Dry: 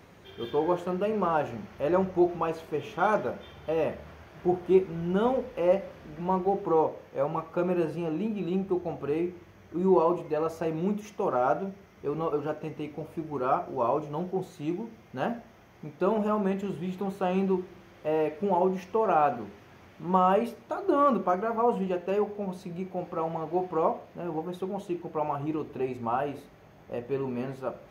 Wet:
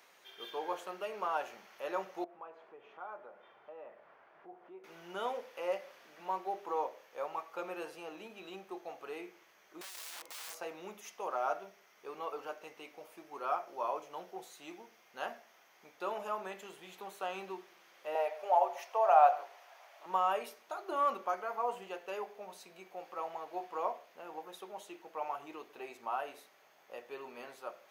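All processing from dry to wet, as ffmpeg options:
-filter_complex "[0:a]asettb=1/sr,asplit=3[a][b][c];[a]atrim=end=2.244[d];[b]atrim=start=2.24:end=4.84,asetpts=PTS-STARTPTS,afade=t=in:d=0.004:c=qsin,afade=t=out:st=2.596:d=0.004:c=qsin,lowpass=1.4k,acompressor=threshold=-43dB:ratio=2:attack=3.2:release=140:knee=1:detection=peak[e];[c]atrim=start=4.836[f];[d][e]acrossfade=d=0.004:c1=hsin:c2=qsin[g];[g][f]acrossfade=d=0.004:c1=qsin:c2=hsin,asettb=1/sr,asplit=3[h][i][j];[h]atrim=end=9.814[k];[i]atrim=start=9.81:end=10.55,asetpts=PTS-STARTPTS,afade=t=in:d=0.004:c=qsin,afade=t=out:st=0.736:d=0.004:c=qsin,bandreject=f=50:t=h:w=6,bandreject=f=100:t=h:w=6,bandreject=f=150:t=h:w=6,bandreject=f=200:t=h:w=6,bandreject=f=250:t=h:w=6,aeval=exprs='(tanh(56.2*val(0)+0.35)-tanh(0.35))/56.2':c=same,aeval=exprs='(mod(63.1*val(0)+1,2)-1)/63.1':c=same[l];[j]atrim=start=10.546[m];[k][l]acrossfade=d=0.004:c1=hsin:c2=qsin[n];[n][m]acrossfade=d=0.004:c1=qsin:c2=hsin,asettb=1/sr,asplit=3[o][p][q];[o]atrim=end=18.154[r];[p]atrim=start=18.15:end=20.06,asetpts=PTS-STARTPTS,afade=t=in:d=0.004:c=qsin,afade=t=out:st=1.906:d=0.004:c=qsin,highpass=f=660:t=q:w=3.7,aecho=1:1:139:0.0944,atrim=end_sample=84231[s];[q]atrim=start=20.056[t];[r][s]acrossfade=d=0.004:c1=hsin:c2=qsin[u];[u][t]acrossfade=d=0.004:c1=qsin:c2=hsin,highpass=680,highshelf=f=2.9k:g=8,volume=-6.5dB"

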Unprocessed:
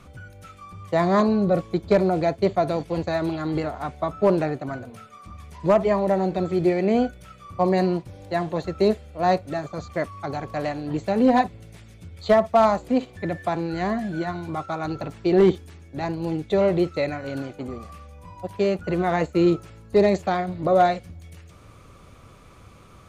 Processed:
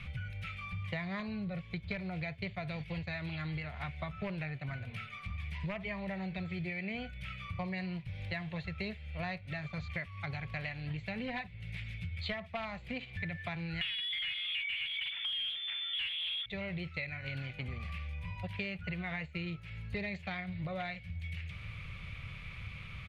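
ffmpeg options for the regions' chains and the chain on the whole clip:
-filter_complex "[0:a]asettb=1/sr,asplit=3[a][b][c];[a]atrim=end=13.814[d];[b]atrim=start=13.81:end=16.46,asetpts=PTS-STARTPTS,afade=t=in:d=0.004:c=qsin,afade=t=out:st=2.646:d=0.004:c=qsin,lowpass=f=3.1k:t=q:w=0.5098,lowpass=f=3.1k:t=q:w=0.6013,lowpass=f=3.1k:t=q:w=0.9,lowpass=f=3.1k:t=q:w=2.563,afreqshift=-3600,asplit=2[e][f];[f]highpass=f=720:p=1,volume=32dB,asoftclip=type=tanh:threshold=-7dB[g];[e][g]amix=inputs=2:normalize=0,lowpass=f=1k:p=1,volume=-6dB,bandreject=f=320:w=7.6[h];[c]atrim=start=16.456[i];[d][h]acrossfade=d=0.004:c1=hsin:c2=qsin[j];[j][i]acrossfade=d=0.004:c1=qsin:c2=hsin,firequalizer=gain_entry='entry(150,0);entry(290,-21);entry(510,-15);entry(1200,-11);entry(2200,9);entry(6300,-17)':delay=0.05:min_phase=1,acompressor=threshold=-41dB:ratio=10,volume=5dB"

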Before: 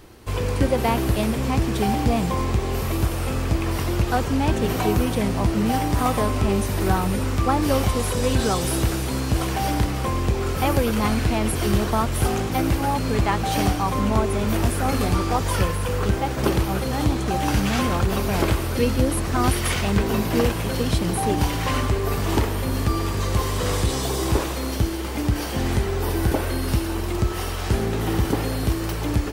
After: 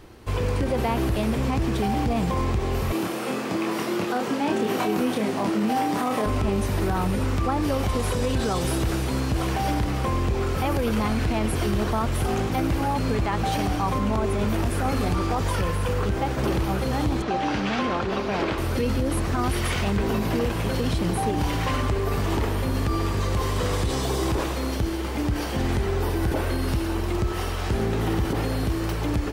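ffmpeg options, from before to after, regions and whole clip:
-filter_complex "[0:a]asettb=1/sr,asplit=3[a][b][c];[a]atrim=end=2.924[d];[b]atrim=start=2.92:end=6.26,asetpts=PTS-STARTPTS,afade=t=in:d=0.004:c=qsin,afade=t=out:st=3.336:d=0.004:c=qsin,highpass=f=180:w=0.5412,highpass=f=180:w=1.3066,asplit=2[e][f];[f]adelay=28,volume=-4dB[g];[e][g]amix=inputs=2:normalize=0,atrim=end_sample=147294[h];[c]atrim=start=6.256[i];[d][h]acrossfade=d=0.004:c1=hsin:c2=qsin[j];[j][i]acrossfade=d=0.004:c1=qsin:c2=hsin,asettb=1/sr,asplit=3[k][l][m];[k]atrim=end=17.224[n];[l]atrim=start=17.22:end=18.58,asetpts=PTS-STARTPTS,afade=t=in:d=0.004:c=qsin,afade=t=out:st=1.356:d=0.004:c=qsin,acrossover=split=190 5900:gain=0.2 1 0.0794[o][p][q];[o][p][q]amix=inputs=3:normalize=0,aeval=exprs='0.251*(abs(mod(val(0)/0.251+3,4)-2)-1)':c=same[r];[m]atrim=start=18.576[s];[n][r]acrossfade=d=0.004:c1=hsin:c2=qsin[t];[t][s]acrossfade=d=0.004:c1=qsin:c2=hsin,highshelf=f=5.6k:g=-7,alimiter=limit=-15.5dB:level=0:latency=1:release=33"

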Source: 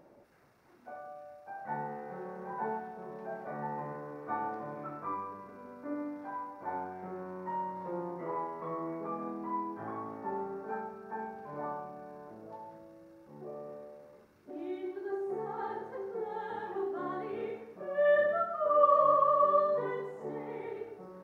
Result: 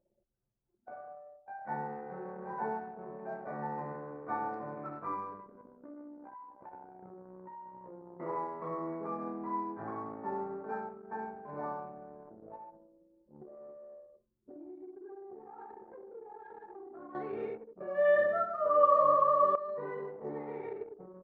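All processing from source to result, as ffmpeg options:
-filter_complex "[0:a]asettb=1/sr,asplit=3[a][b][c];[a]atrim=end=5.614[d];[b]atrim=start=5.61:end=8.2,asetpts=PTS-STARTPTS,afade=t=in:d=0.004:c=qsin,afade=t=out:st=2.586:d=0.004:c=qsin,acompressor=threshold=-43dB:ratio=4:attack=3.2:release=140:knee=1:detection=peak,tremolo=f=65:d=0.4[e];[c]atrim=start=8.196[f];[d][e]acrossfade=d=0.004:c1=hsin:c2=qsin[g];[g][f]acrossfade=d=0.004:c1=qsin:c2=hsin,asettb=1/sr,asplit=3[h][i][j];[h]atrim=end=13.424[k];[i]atrim=start=13.42:end=17.15,asetpts=PTS-STARTPTS,afade=t=in:d=0.004:c=qsin,afade=t=out:st=3.726:d=0.004:c=qsin,asplit=2[l][m];[m]adelay=24,volume=-5dB[n];[l][n]amix=inputs=2:normalize=0,atrim=end_sample=164493,acompressor=threshold=-45dB:ratio=4:attack=3.2:release=140:knee=1:detection=peak[o];[j]atrim=start=17.146[p];[k][o]acrossfade=d=0.004:c1=hsin:c2=qsin[q];[q][p]acrossfade=d=0.004:c1=qsin:c2=hsin,asettb=1/sr,asplit=3[r][s][t];[r]atrim=end=19.554[u];[s]atrim=start=19.55:end=20.1,asetpts=PTS-STARTPTS,afade=t=in:d=0.004:c=qsin,afade=t=out:st=0.546:d=0.004:c=qsin,asuperstop=centerf=3300:order=4:qfactor=5.5,acompressor=threshold=-34dB:ratio=12:attack=3.2:release=140:knee=1:detection=peak[v];[t]atrim=start=20.096[w];[u][v]acrossfade=d=0.004:c1=hsin:c2=qsin[x];[x][w]acrossfade=d=0.004:c1=qsin:c2=hsin,anlmdn=0.0398,equalizer=f=3.2k:t=o:w=0.34:g=-7.5"

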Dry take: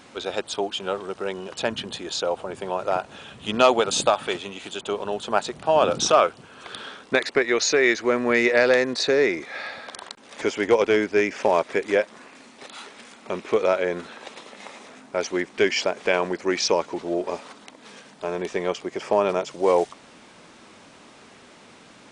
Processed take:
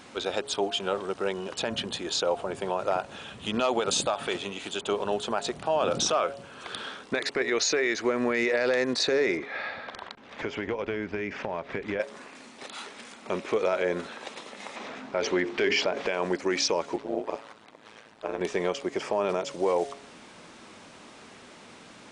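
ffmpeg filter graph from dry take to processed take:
-filter_complex "[0:a]asettb=1/sr,asplit=3[a][b][c];[a]atrim=end=9.374[d];[b]atrim=start=9.37:end=12,asetpts=PTS-STARTPTS,afade=t=in:d=0.004:c=qsin,afade=t=out:st=2.626:d=0.004:c=qsin,lowpass=3.1k,asubboost=boost=5:cutoff=190,acompressor=threshold=-26dB:ratio=10:attack=3.2:release=140:knee=1:detection=peak[e];[c]atrim=start=11.996[f];[d][e]acrossfade=d=0.004:c1=hsin:c2=qsin[g];[g][f]acrossfade=d=0.004:c1=qsin:c2=hsin,asettb=1/sr,asplit=3[h][i][j];[h]atrim=end=14.764[k];[i]atrim=start=14.76:end=16.07,asetpts=PTS-STARTPTS,afade=t=in:d=0.004:c=qsin,afade=t=out:st=1.306:d=0.004:c=qsin,lowpass=4.4k,bandreject=f=50:t=h:w=6,bandreject=f=100:t=h:w=6,bandreject=f=150:t=h:w=6,bandreject=f=200:t=h:w=6,bandreject=f=250:t=h:w=6,bandreject=f=300:t=h:w=6,bandreject=f=350:t=h:w=6,bandreject=f=400:t=h:w=6,bandreject=f=450:t=h:w=6,acontrast=53[l];[j]atrim=start=16.066[m];[k][l]acrossfade=d=0.004:c1=hsin:c2=qsin[n];[n][m]acrossfade=d=0.004:c1=qsin:c2=hsin,asettb=1/sr,asplit=3[o][p][q];[o]atrim=end=16.964[r];[p]atrim=start=16.96:end=18.41,asetpts=PTS-STARTPTS,afade=t=in:d=0.004:c=qsin,afade=t=out:st=1.446:d=0.004:c=qsin,bass=f=250:g=-8,treble=f=4k:g=-8,tremolo=f=110:d=0.889[s];[q]atrim=start=18.406[t];[r][s]acrossfade=d=0.004:c1=hsin:c2=qsin[u];[u][t]acrossfade=d=0.004:c1=qsin:c2=hsin,bandreject=f=139.2:t=h:w=4,bandreject=f=278.4:t=h:w=4,bandreject=f=417.6:t=h:w=4,bandreject=f=556.8:t=h:w=4,bandreject=f=696:t=h:w=4,alimiter=limit=-16dB:level=0:latency=1:release=75"

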